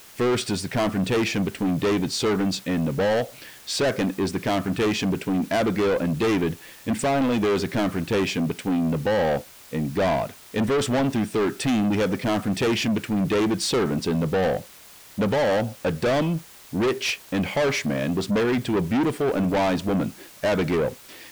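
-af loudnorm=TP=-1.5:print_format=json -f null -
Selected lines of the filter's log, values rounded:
"input_i" : "-24.0",
"input_tp" : "-18.2",
"input_lra" : "0.9",
"input_thresh" : "-34.2",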